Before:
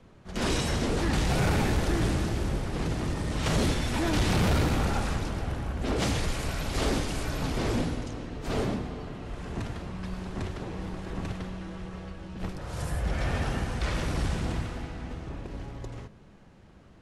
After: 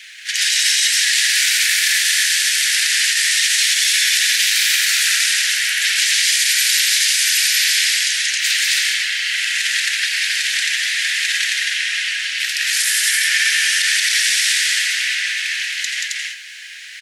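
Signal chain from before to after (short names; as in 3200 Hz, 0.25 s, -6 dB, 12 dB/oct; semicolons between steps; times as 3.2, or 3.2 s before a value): steep high-pass 1700 Hz 72 dB/oct; dynamic EQ 2400 Hz, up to -5 dB, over -52 dBFS, Q 0.94; compressor, threshold -47 dBFS, peak gain reduction 13.5 dB; on a send: loudspeakers at several distances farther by 62 m -3 dB, 92 m -2 dB; on the sum: maximiser +35.5 dB; gain -4 dB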